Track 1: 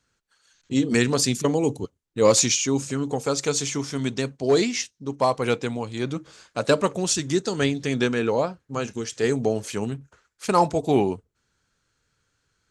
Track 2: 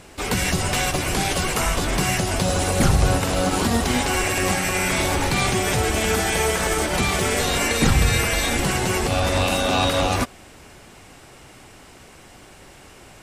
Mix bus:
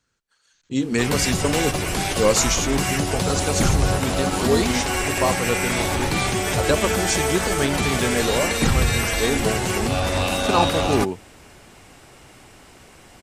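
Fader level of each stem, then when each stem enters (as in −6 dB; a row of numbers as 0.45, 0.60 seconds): −1.0, −1.5 decibels; 0.00, 0.80 seconds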